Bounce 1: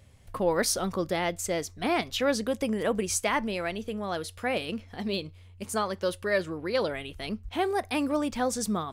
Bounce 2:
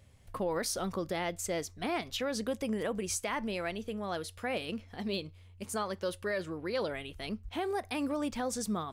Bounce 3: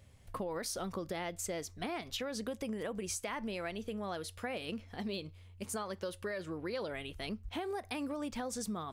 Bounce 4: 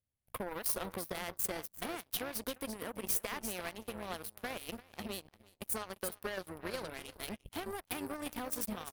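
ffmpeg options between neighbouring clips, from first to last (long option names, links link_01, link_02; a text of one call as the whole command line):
ffmpeg -i in.wav -af "alimiter=limit=-20dB:level=0:latency=1:release=76,volume=-4dB" out.wav
ffmpeg -i in.wav -af "acompressor=threshold=-35dB:ratio=6" out.wav
ffmpeg -i in.wav -af "aecho=1:1:345:0.355,aeval=exprs='0.0596*(cos(1*acos(clip(val(0)/0.0596,-1,1)))-cos(1*PI/2))+0.015*(cos(2*acos(clip(val(0)/0.0596,-1,1)))-cos(2*PI/2))+0.000841*(cos(3*acos(clip(val(0)/0.0596,-1,1)))-cos(3*PI/2))+0.00841*(cos(7*acos(clip(val(0)/0.0596,-1,1)))-cos(7*PI/2))+0.000473*(cos(8*acos(clip(val(0)/0.0596,-1,1)))-cos(8*PI/2))':channel_layout=same,aexciter=amount=4.3:drive=6.2:freq=9600" out.wav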